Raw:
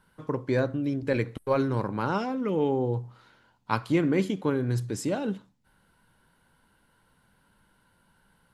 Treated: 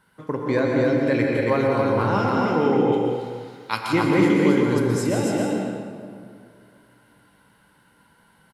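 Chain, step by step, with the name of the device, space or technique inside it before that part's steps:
stadium PA (high-pass filter 120 Hz 6 dB per octave; parametric band 2,000 Hz +4.5 dB 0.23 octaves; loudspeakers that aren't time-aligned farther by 57 metres −11 dB, 94 metres −3 dB; convolution reverb RT60 2.4 s, pre-delay 10 ms, DRR 6 dB)
0:02.92–0:03.93: tilt shelving filter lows −8.5 dB, about 1,500 Hz
dense smooth reverb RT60 1 s, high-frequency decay 0.85×, pre-delay 110 ms, DRR 2.5 dB
level +3 dB

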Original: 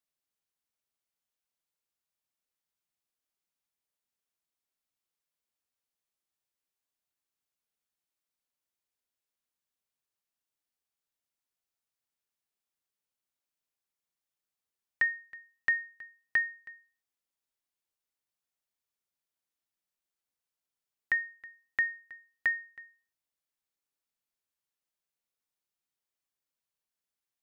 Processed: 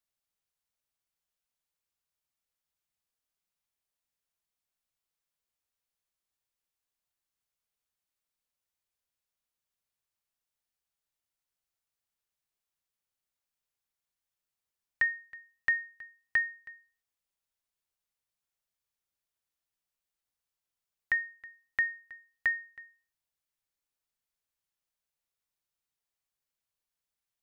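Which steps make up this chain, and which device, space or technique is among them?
low shelf boost with a cut just above (low-shelf EQ 110 Hz +7 dB; parametric band 280 Hz −4.5 dB 1.1 octaves)

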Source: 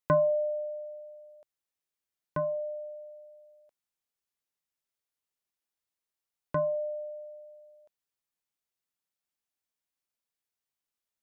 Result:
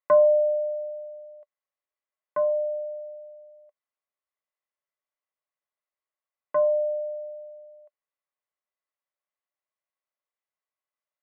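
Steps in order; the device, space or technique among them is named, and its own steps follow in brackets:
tin-can telephone (band-pass filter 500–2,100 Hz; hollow resonant body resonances 590/1,100/2,000 Hz, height 10 dB)

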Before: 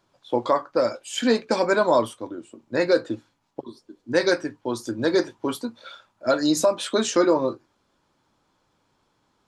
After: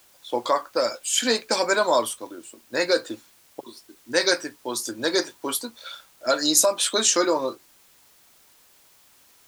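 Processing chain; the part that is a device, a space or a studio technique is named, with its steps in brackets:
turntable without a phono preamp (RIAA equalisation recording; white noise bed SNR 31 dB)

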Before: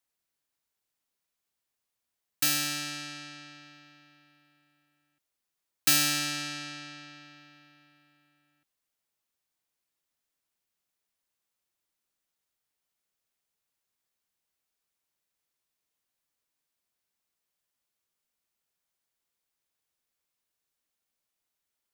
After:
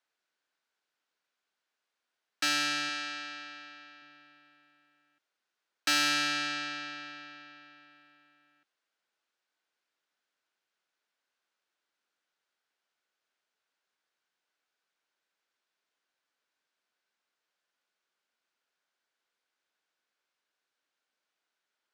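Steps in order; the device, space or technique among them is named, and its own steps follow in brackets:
0:02.89–0:04.02: high-pass filter 290 Hz 6 dB per octave
intercom (band-pass filter 310–4,600 Hz; parametric band 1,500 Hz +7 dB 0.28 octaves; soft clipping −25.5 dBFS, distortion −14 dB)
level +4 dB

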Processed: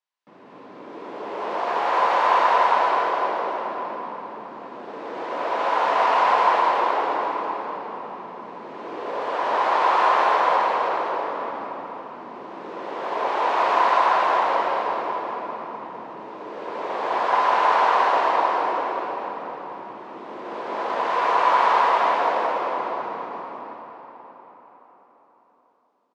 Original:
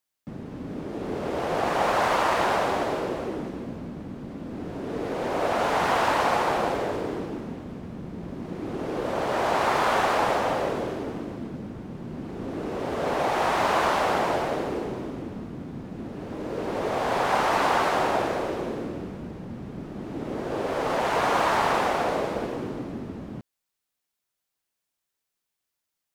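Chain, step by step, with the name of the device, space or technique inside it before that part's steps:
station announcement (band-pass filter 490–4,200 Hz; parametric band 1,000 Hz +9.5 dB 0.24 octaves; loudspeakers that aren't time-aligned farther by 41 metres −11 dB, 68 metres −2 dB; convolution reverb RT60 4.8 s, pre-delay 5 ms, DRR −2 dB)
level −4 dB

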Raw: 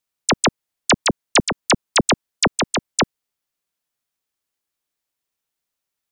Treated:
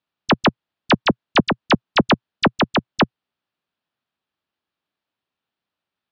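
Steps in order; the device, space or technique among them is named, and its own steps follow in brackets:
guitar amplifier (tube saturation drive 13 dB, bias 0.2; bass and treble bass +4 dB, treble −6 dB; loudspeaker in its box 100–4,200 Hz, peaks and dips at 120 Hz −4 dB, 460 Hz −3 dB, 2,100 Hz −5 dB)
level +5 dB

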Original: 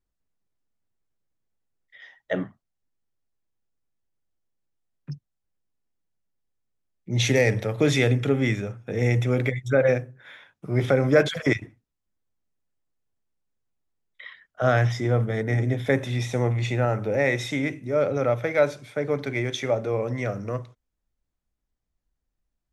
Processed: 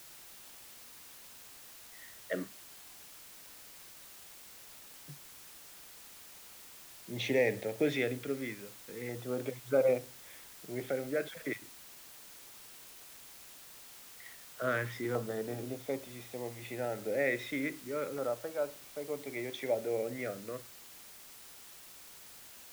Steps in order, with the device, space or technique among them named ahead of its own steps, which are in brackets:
shortwave radio (band-pass filter 260–3,000 Hz; amplitude tremolo 0.4 Hz, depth 60%; auto-filter notch saw down 0.33 Hz 630–2,400 Hz; white noise bed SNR 14 dB)
level −6 dB

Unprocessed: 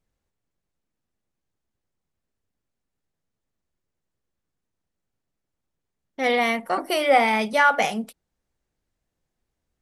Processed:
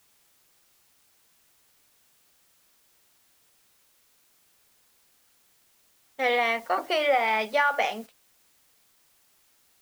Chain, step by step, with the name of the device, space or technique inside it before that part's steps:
baby monitor (band-pass filter 440–4,200 Hz; downward compressor, threshold −19 dBFS, peak gain reduction 7 dB; white noise bed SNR 22 dB; noise gate −40 dBFS, range −10 dB)

